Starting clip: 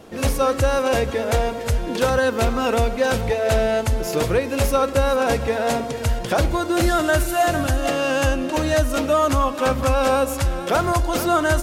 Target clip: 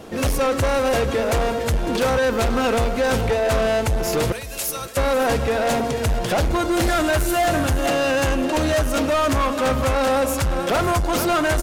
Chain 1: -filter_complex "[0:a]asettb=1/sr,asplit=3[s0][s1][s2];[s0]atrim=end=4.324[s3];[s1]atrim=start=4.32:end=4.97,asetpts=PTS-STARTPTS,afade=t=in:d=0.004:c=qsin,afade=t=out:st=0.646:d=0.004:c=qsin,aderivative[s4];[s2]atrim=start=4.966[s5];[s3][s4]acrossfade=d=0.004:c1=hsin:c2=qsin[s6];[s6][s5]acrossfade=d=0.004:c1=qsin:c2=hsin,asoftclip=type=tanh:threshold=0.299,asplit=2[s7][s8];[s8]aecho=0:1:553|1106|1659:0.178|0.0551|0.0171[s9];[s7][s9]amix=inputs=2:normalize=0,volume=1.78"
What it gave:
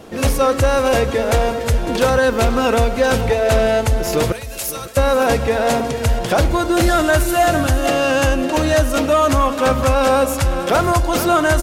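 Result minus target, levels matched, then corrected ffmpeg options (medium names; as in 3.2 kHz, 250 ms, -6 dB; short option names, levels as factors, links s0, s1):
saturation: distortion -12 dB
-filter_complex "[0:a]asettb=1/sr,asplit=3[s0][s1][s2];[s0]atrim=end=4.324[s3];[s1]atrim=start=4.32:end=4.97,asetpts=PTS-STARTPTS,afade=t=in:d=0.004:c=qsin,afade=t=out:st=0.646:d=0.004:c=qsin,aderivative[s4];[s2]atrim=start=4.966[s5];[s3][s4]acrossfade=d=0.004:c1=hsin:c2=qsin[s6];[s6][s5]acrossfade=d=0.004:c1=qsin:c2=hsin,asoftclip=type=tanh:threshold=0.0891,asplit=2[s7][s8];[s8]aecho=0:1:553|1106|1659:0.178|0.0551|0.0171[s9];[s7][s9]amix=inputs=2:normalize=0,volume=1.78"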